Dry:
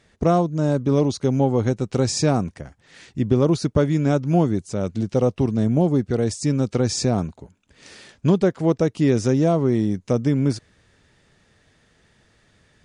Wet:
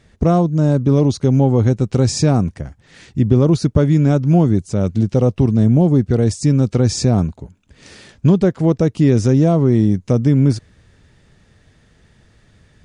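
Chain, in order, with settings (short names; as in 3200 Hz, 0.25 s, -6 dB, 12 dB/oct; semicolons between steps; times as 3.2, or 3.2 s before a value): low shelf 210 Hz +10 dB; in parallel at -0.5 dB: limiter -8.5 dBFS, peak gain reduction 7.5 dB; on the sum: gain -3.5 dB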